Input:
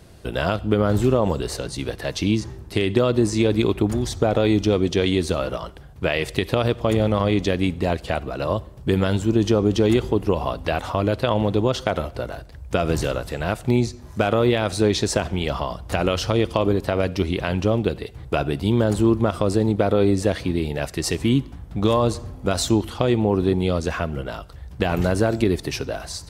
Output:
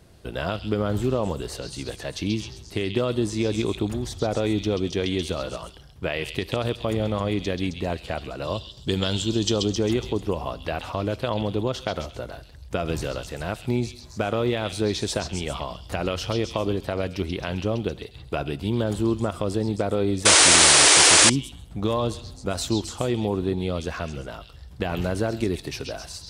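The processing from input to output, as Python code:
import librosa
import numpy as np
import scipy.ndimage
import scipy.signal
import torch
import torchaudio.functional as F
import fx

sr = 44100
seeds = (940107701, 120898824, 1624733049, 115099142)

y = fx.band_shelf(x, sr, hz=4900.0, db=12.0, octaves=1.7, at=(8.44, 9.61))
y = fx.echo_stepped(y, sr, ms=133, hz=3800.0, octaves=0.7, feedback_pct=70, wet_db=-1.5)
y = fx.spec_paint(y, sr, seeds[0], shape='noise', start_s=20.25, length_s=1.05, low_hz=280.0, high_hz=10000.0, level_db=-9.0)
y = y * librosa.db_to_amplitude(-5.5)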